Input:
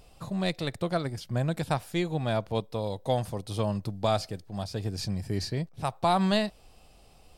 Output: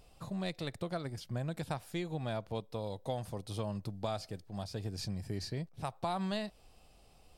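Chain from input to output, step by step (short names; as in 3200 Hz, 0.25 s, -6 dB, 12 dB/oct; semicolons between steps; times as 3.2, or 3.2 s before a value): compressor 2.5:1, threshold -29 dBFS, peak gain reduction 6.5 dB; gain -5.5 dB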